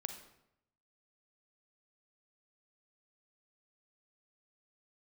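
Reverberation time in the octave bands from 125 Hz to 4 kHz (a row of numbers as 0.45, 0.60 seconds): 1.0, 0.85, 0.80, 0.80, 0.70, 0.60 seconds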